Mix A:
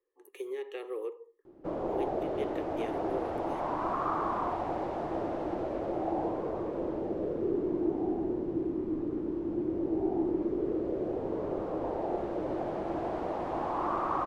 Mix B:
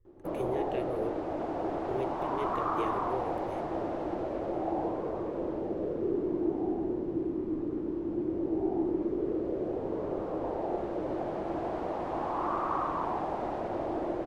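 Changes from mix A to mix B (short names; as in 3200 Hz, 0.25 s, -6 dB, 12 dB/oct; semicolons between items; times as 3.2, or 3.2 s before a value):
speech: remove inverse Chebyshev high-pass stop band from 180 Hz; background: entry -1.40 s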